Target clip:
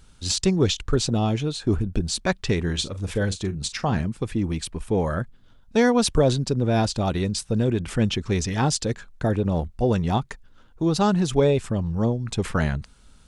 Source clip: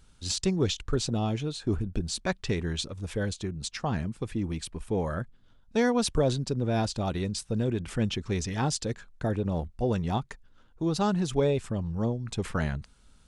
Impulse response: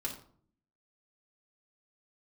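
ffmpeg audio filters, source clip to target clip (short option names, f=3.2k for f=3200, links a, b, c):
-filter_complex "[0:a]asettb=1/sr,asplit=3[a][b][c];[a]atrim=end=2.614[d];[b]atrim=start=2.61:end=4.01,asetpts=PTS-STARTPTS,afade=t=in:d=0.004:c=qsin,afade=t=out:st=1.396:d=0.004:c=qsin,asplit=2[e][f];[f]adelay=41,volume=-13dB[g];[e][g]amix=inputs=2:normalize=0,atrim=end_sample=61740[h];[c]atrim=start=4.006[i];[d][h]acrossfade=d=0.004:c1=hsin:c2=qsin[j];[j][i]acrossfade=d=0.004:c1=qsin:c2=hsin,volume=6dB"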